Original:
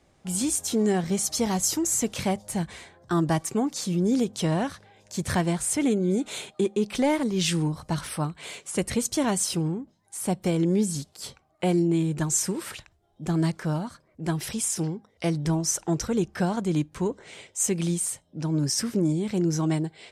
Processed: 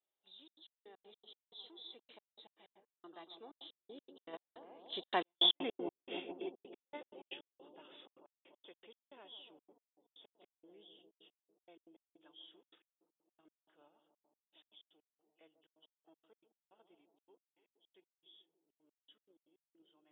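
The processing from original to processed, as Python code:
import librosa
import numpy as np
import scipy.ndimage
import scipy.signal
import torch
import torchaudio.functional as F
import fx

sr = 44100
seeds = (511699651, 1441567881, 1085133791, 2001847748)

p1 = fx.freq_compress(x, sr, knee_hz=2600.0, ratio=4.0)
p2 = fx.doppler_pass(p1, sr, speed_mps=14, closest_m=1.8, pass_at_s=5.33)
p3 = scipy.signal.sosfilt(scipy.signal.butter(4, 360.0, 'highpass', fs=sr, output='sos'), p2)
p4 = p3 + fx.echo_bbd(p3, sr, ms=145, stages=1024, feedback_pct=79, wet_db=-9, dry=0)
p5 = fx.step_gate(p4, sr, bpm=158, pattern='xxxxx.x..x.x.x..', floor_db=-60.0, edge_ms=4.5)
p6 = fx.level_steps(p5, sr, step_db=23)
p7 = p5 + F.gain(torch.from_numpy(p6), -1.5).numpy()
y = F.gain(torch.from_numpy(p7), -2.5).numpy()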